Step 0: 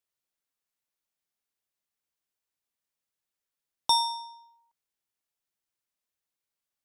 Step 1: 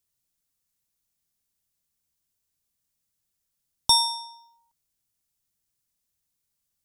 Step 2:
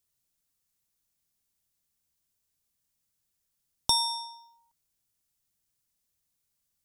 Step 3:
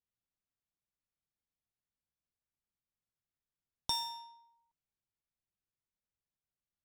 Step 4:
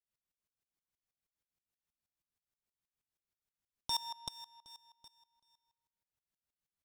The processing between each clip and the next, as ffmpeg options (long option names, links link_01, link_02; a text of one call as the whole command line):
ffmpeg -i in.wav -af "bass=frequency=250:gain=15,treble=frequency=4000:gain=10" out.wav
ffmpeg -i in.wav -af "acompressor=threshold=-26dB:ratio=2" out.wav
ffmpeg -i in.wav -af "acrusher=bits=5:mode=log:mix=0:aa=0.000001,adynamicsmooth=sensitivity=5:basefreq=2900,volume=-9dB" out.wav
ffmpeg -i in.wav -filter_complex "[0:a]asplit=2[link_01][link_02];[link_02]aecho=0:1:383|766|1149|1532:0.316|0.117|0.0433|0.016[link_03];[link_01][link_03]amix=inputs=2:normalize=0,aeval=exprs='val(0)*pow(10,-21*if(lt(mod(-6.3*n/s,1),2*abs(-6.3)/1000),1-mod(-6.3*n/s,1)/(2*abs(-6.3)/1000),(mod(-6.3*n/s,1)-2*abs(-6.3)/1000)/(1-2*abs(-6.3)/1000))/20)':channel_layout=same,volume=5dB" out.wav